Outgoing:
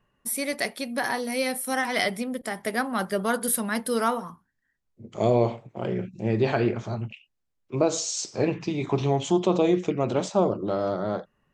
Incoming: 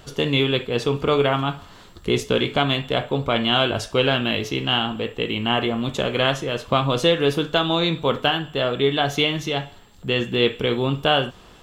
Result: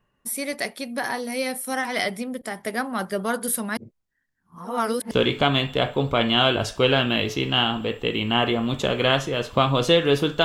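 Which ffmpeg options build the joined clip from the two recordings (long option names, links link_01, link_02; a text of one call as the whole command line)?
ffmpeg -i cue0.wav -i cue1.wav -filter_complex "[0:a]apad=whole_dur=10.44,atrim=end=10.44,asplit=2[link_01][link_02];[link_01]atrim=end=3.772[link_03];[link_02]atrim=start=3.768:end=5.112,asetpts=PTS-STARTPTS,areverse[link_04];[1:a]atrim=start=2.258:end=7.59[link_05];[link_03][link_04]acrossfade=duration=0.004:curve1=hsin:curve2=hsin[link_06];[link_06][link_05]acrossfade=duration=0.004:curve1=hsin:curve2=hsin" out.wav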